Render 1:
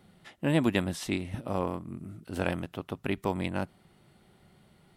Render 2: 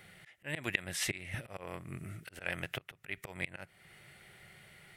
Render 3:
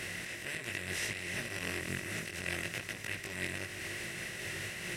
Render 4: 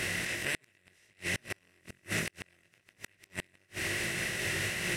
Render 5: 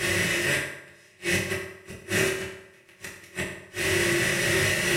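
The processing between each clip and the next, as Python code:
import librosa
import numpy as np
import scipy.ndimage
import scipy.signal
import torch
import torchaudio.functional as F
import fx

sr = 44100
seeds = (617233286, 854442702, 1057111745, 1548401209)

y1 = fx.low_shelf(x, sr, hz=350.0, db=-12.0)
y1 = fx.auto_swell(y1, sr, attack_ms=382.0)
y1 = fx.graphic_eq(y1, sr, hz=(125, 250, 1000, 2000, 4000), db=(5, -11, -10, 10, -5))
y1 = y1 * 10.0 ** (9.0 / 20.0)
y2 = fx.bin_compress(y1, sr, power=0.2)
y2 = fx.chorus_voices(y2, sr, voices=4, hz=0.63, base_ms=20, depth_ms=3.1, mix_pct=50)
y2 = fx.am_noise(y2, sr, seeds[0], hz=5.7, depth_pct=55)
y2 = y2 * 10.0 ** (-3.0 / 20.0)
y3 = fx.gate_flip(y2, sr, shuts_db=-26.0, range_db=-36)
y3 = y3 * 10.0 ** (7.0 / 20.0)
y4 = fx.rev_fdn(y3, sr, rt60_s=0.85, lf_ratio=0.8, hf_ratio=0.7, size_ms=16.0, drr_db=-8.0)
y4 = y4 * 10.0 ** (1.0 / 20.0)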